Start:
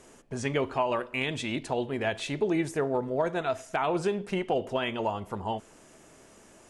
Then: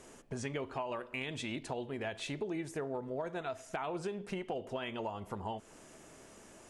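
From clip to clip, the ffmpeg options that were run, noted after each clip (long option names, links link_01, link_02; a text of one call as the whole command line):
ffmpeg -i in.wav -af "acompressor=threshold=-37dB:ratio=3,volume=-1dB" out.wav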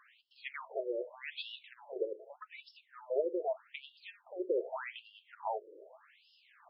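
ffmpeg -i in.wav -af "lowshelf=frequency=280:width_type=q:width=3:gain=-13,aeval=exprs='0.0944*(cos(1*acos(clip(val(0)/0.0944,-1,1)))-cos(1*PI/2))+0.00841*(cos(3*acos(clip(val(0)/0.0944,-1,1)))-cos(3*PI/2))':channel_layout=same,afftfilt=real='re*between(b*sr/1024,400*pow(3900/400,0.5+0.5*sin(2*PI*0.83*pts/sr))/1.41,400*pow(3900/400,0.5+0.5*sin(2*PI*0.83*pts/sr))*1.41)':imag='im*between(b*sr/1024,400*pow(3900/400,0.5+0.5*sin(2*PI*0.83*pts/sr))/1.41,400*pow(3900/400,0.5+0.5*sin(2*PI*0.83*pts/sr))*1.41)':win_size=1024:overlap=0.75,volume=5dB" out.wav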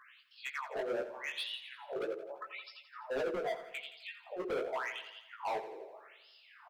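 ffmpeg -i in.wav -filter_complex "[0:a]asoftclip=type=hard:threshold=-38dB,flanger=delay=15:depth=6.3:speed=1.9,asplit=2[link_01][link_02];[link_02]aecho=0:1:85|170|255|340|425|510:0.237|0.138|0.0798|0.0463|0.0268|0.0156[link_03];[link_01][link_03]amix=inputs=2:normalize=0,volume=8dB" out.wav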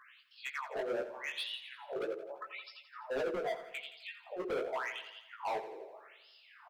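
ffmpeg -i in.wav -af anull out.wav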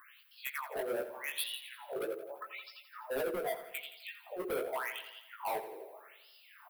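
ffmpeg -i in.wav -af "aexciter=amount=6.5:drive=9.7:freq=9500" out.wav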